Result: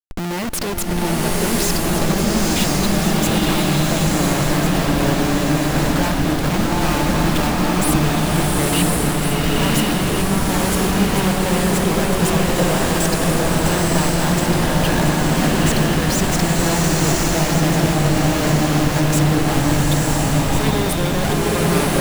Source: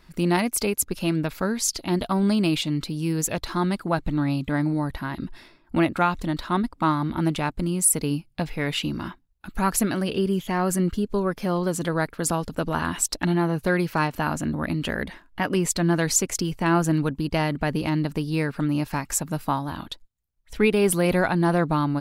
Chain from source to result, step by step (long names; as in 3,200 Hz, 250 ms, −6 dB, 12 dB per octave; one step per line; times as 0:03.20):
notch filter 1,400 Hz, Q 20
in parallel at −3 dB: downward compressor, threshold −31 dBFS, peak gain reduction 15 dB
on the sum: bit reduction 8 bits
comparator with hysteresis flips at −30.5 dBFS
on a send: delay that swaps between a low-pass and a high-pass 700 ms, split 1,100 Hz, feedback 78%, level −6 dB
on the sum: slow-attack reverb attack 1,040 ms, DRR −4 dB